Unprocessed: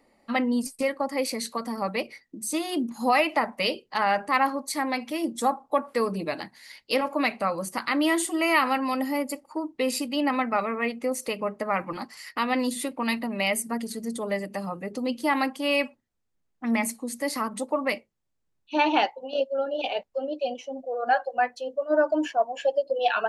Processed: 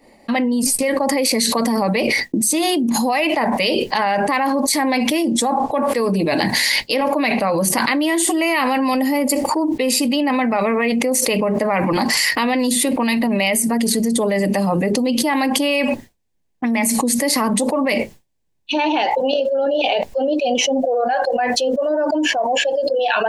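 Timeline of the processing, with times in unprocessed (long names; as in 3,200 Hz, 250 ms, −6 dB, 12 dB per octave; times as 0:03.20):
0:05.23–0:05.83: Bessel low-pass filter 9,400 Hz
0:06.93–0:07.68: parametric band 7,700 Hz −7 dB 0.44 octaves
whole clip: downward expander −48 dBFS; parametric band 1,300 Hz −11.5 dB 0.31 octaves; envelope flattener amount 100%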